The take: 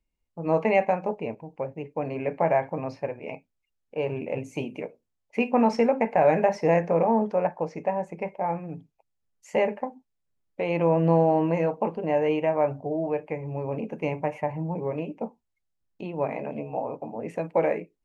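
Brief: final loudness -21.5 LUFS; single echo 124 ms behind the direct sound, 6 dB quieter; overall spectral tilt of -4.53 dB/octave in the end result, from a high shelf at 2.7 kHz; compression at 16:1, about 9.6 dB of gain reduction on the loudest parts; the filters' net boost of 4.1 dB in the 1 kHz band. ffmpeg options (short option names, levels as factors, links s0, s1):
-af "equalizer=f=1000:t=o:g=6.5,highshelf=f=2700:g=-8,acompressor=threshold=0.0708:ratio=16,aecho=1:1:124:0.501,volume=2.66"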